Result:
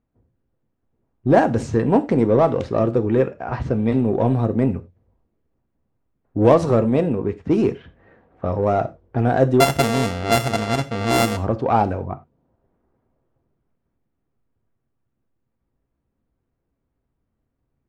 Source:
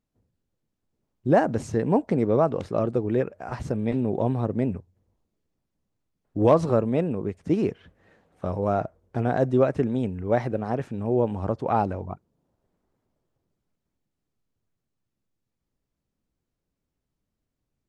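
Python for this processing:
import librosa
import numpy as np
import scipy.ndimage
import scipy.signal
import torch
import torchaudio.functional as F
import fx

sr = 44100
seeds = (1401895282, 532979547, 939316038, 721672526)

p1 = fx.sample_sort(x, sr, block=64, at=(9.6, 11.37))
p2 = fx.env_lowpass(p1, sr, base_hz=1700.0, full_db=-18.0)
p3 = 10.0 ** (-23.0 / 20.0) * np.tanh(p2 / 10.0 ** (-23.0 / 20.0))
p4 = p2 + (p3 * 10.0 ** (-4.0 / 20.0))
p5 = fx.rev_gated(p4, sr, seeds[0], gate_ms=120, shape='falling', drr_db=9.0)
y = p5 * 10.0 ** (2.5 / 20.0)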